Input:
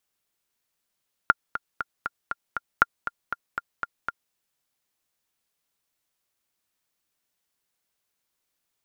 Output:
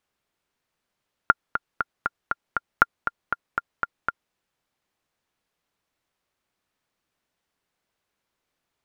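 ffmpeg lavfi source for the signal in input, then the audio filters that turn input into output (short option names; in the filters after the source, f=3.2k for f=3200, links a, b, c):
-f lavfi -i "aevalsrc='pow(10,(-2.5-12*gte(mod(t,6*60/237),60/237))/20)*sin(2*PI*1400*mod(t,60/237))*exp(-6.91*mod(t,60/237)/0.03)':d=3.03:s=44100"
-filter_complex "[0:a]lowpass=f=2k:p=1,asplit=2[a][b];[b]alimiter=limit=-12dB:level=0:latency=1:release=34,volume=1dB[c];[a][c]amix=inputs=2:normalize=0"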